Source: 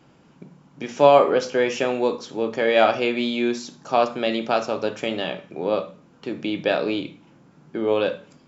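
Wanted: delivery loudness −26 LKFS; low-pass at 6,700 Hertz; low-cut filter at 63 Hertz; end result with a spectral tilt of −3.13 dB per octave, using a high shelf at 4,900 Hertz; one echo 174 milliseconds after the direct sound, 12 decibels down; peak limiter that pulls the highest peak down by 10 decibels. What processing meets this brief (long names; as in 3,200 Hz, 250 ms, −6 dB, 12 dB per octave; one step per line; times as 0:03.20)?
high-pass filter 63 Hz
low-pass filter 6,700 Hz
high-shelf EQ 4,900 Hz −5 dB
brickwall limiter −11.5 dBFS
single-tap delay 174 ms −12 dB
level −1.5 dB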